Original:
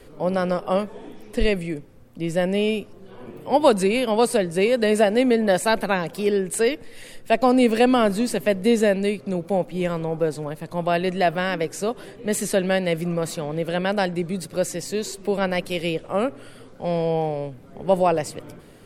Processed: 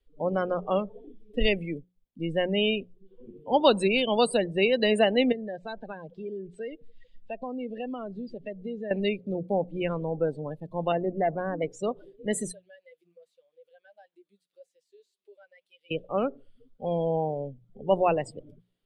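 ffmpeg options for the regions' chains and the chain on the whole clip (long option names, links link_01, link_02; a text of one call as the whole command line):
ffmpeg -i in.wav -filter_complex "[0:a]asettb=1/sr,asplit=3[link_01][link_02][link_03];[link_01]atrim=end=1.574[link_04];[link_02]atrim=start=1.57:end=2.22,asetpts=PTS-STARTPTS,afade=type=in:duration=0.004:curve=qsin,afade=type=out:start_time=0.646:duration=0.004:curve=qsin,highshelf=frequency=8100:gain=9.5,aeval=exprs='sgn(val(0))*max(abs(val(0))-0.00188,0)':channel_layout=same[link_05];[link_03]atrim=start=2.216[link_06];[link_04][link_05]acrossfade=duration=0.004:curve1=hsin:curve2=qsin[link_07];[link_07][link_06]acrossfade=duration=0.004:curve1=qsin:curve2=hsin,asettb=1/sr,asplit=3[link_08][link_09][link_10];[link_08]atrim=end=5.324[link_11];[link_09]atrim=start=5.32:end=8.91,asetpts=PTS-STARTPTS,afade=type=in:duration=0.004:curve=qsin,afade=type=out:start_time=3.586:duration=0.004:curve=qsin,lowpass=frequency=6000:width=0.5412,lowpass=frequency=6000:width=1.3066,acompressor=threshold=-33dB:ratio=2.5:attack=3.2:release=140:knee=1:detection=peak[link_12];[link_10]atrim=start=8.906[link_13];[link_11][link_12]acrossfade=duration=0.004:curve1=hsin:curve2=qsin[link_14];[link_14][link_13]acrossfade=duration=0.004:curve1=qsin:curve2=hsin,asettb=1/sr,asplit=3[link_15][link_16][link_17];[link_15]atrim=end=10.924[link_18];[link_16]atrim=start=10.92:end=11.62,asetpts=PTS-STARTPTS,afade=type=in:duration=0.004:curve=qsin,afade=type=out:start_time=0.696:duration=0.004:curve=qsin,lowpass=1100,asoftclip=type=hard:threshold=-15dB[link_19];[link_17]atrim=start=11.616[link_20];[link_18][link_19]acrossfade=duration=0.004:curve1=hsin:curve2=qsin[link_21];[link_21][link_20]acrossfade=duration=0.004:curve1=qsin:curve2=hsin,asettb=1/sr,asplit=3[link_22][link_23][link_24];[link_22]atrim=end=12.524[link_25];[link_23]atrim=start=12.52:end=15.91,asetpts=PTS-STARTPTS,afade=type=in:duration=0.004:curve=qsin,afade=type=out:start_time=3.386:duration=0.004:curve=qsin,highpass=frequency=1400:poles=1,acompressor=threshold=-40dB:ratio=2:attack=3.2:release=140:knee=1:detection=peak,flanger=delay=1.8:depth=5:regen=-88:speed=1.8:shape=triangular[link_26];[link_24]atrim=start=15.906[link_27];[link_25][link_26]acrossfade=duration=0.004:curve1=hsin:curve2=qsin[link_28];[link_28][link_27]acrossfade=duration=0.004:curve1=qsin:curve2=hsin,afftdn=noise_reduction=33:noise_floor=-29,equalizer=frequency=3400:width=1.8:gain=13,bandreject=frequency=60:width_type=h:width=6,bandreject=frequency=120:width_type=h:width=6,bandreject=frequency=180:width_type=h:width=6,volume=-4.5dB" out.wav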